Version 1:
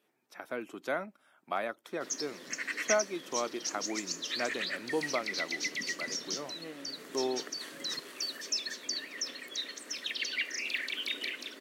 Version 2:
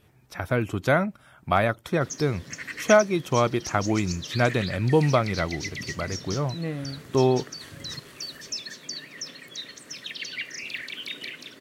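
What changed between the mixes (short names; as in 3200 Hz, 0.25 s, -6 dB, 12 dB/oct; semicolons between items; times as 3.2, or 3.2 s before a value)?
speech +11.5 dB; master: remove HPF 250 Hz 24 dB/oct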